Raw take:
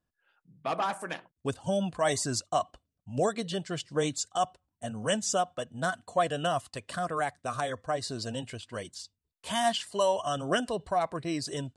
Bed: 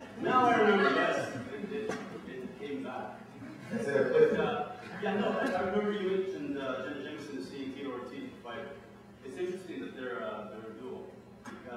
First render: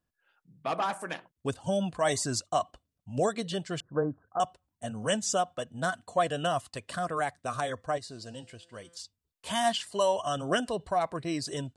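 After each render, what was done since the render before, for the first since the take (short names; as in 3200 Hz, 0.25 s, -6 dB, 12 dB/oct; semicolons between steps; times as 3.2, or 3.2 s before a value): 3.8–4.4 steep low-pass 1600 Hz 96 dB/oct; 7.98–8.97 resonator 170 Hz, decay 1.7 s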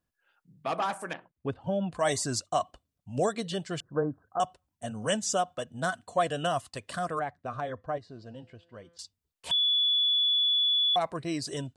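1.13–1.92 air absorption 410 m; 7.19–8.99 tape spacing loss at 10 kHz 31 dB; 9.51–10.96 bleep 3430 Hz -22 dBFS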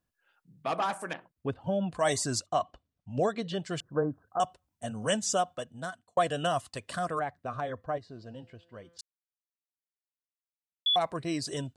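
2.46–3.64 air absorption 120 m; 5.44–6.17 fade out linear; 9.01–10.86 mute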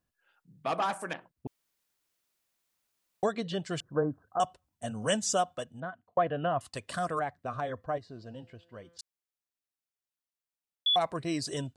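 1.47–3.23 room tone; 5.8–6.61 Gaussian blur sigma 3.7 samples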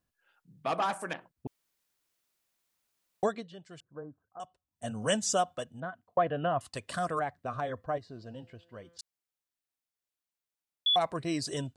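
3.27–4.88 dip -15 dB, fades 0.20 s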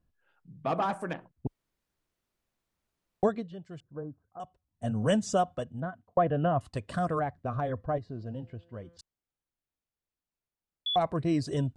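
tilt -3 dB/oct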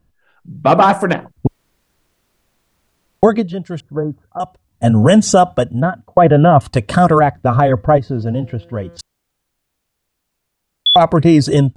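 AGC gain up to 6 dB; maximiser +13.5 dB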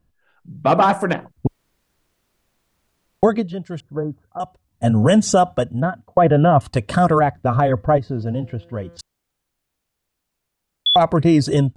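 gain -4.5 dB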